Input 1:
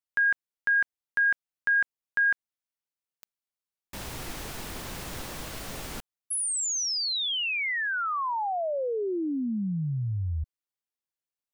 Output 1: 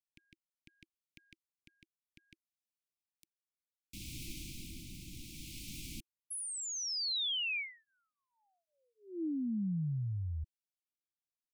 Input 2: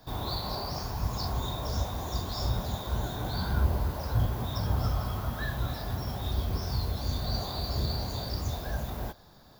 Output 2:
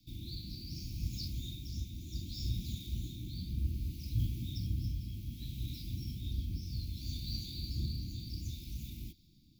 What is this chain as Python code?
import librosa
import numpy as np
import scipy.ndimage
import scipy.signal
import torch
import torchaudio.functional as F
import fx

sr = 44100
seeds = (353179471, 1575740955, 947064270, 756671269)

y = scipy.signal.sosfilt(scipy.signal.ellip(4, 1.0, 40, [330.0, 2300.0], 'bandstop', fs=sr, output='sos'), x)
y = fx.rotary(y, sr, hz=0.65)
y = y * librosa.db_to_amplitude(-5.0)